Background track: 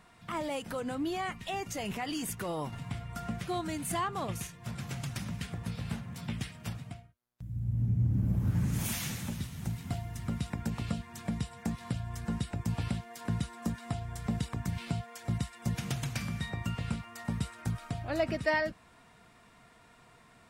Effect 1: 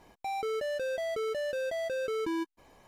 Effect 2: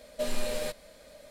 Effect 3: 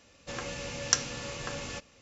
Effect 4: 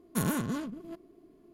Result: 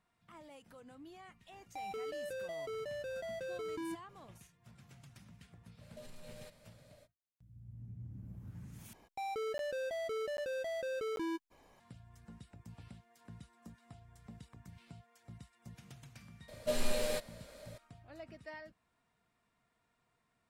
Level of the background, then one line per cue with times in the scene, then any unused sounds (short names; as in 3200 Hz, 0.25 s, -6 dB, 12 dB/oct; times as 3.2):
background track -20 dB
1.51 add 1 -9 dB
5.78 add 2 -11.5 dB, fades 0.05 s + compressor 5:1, threshold -37 dBFS
8.93 replace with 1 -5.5 dB + crackling interface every 0.79 s zero
16.48 add 2 -2 dB
not used: 3, 4